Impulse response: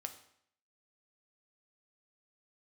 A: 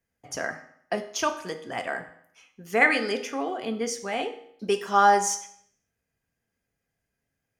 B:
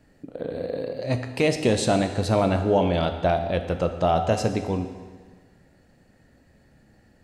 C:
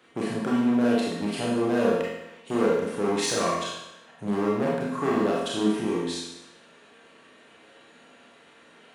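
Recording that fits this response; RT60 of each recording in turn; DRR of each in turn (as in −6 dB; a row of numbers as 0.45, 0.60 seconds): A; 0.65, 1.5, 0.90 seconds; 5.5, 6.5, −5.5 decibels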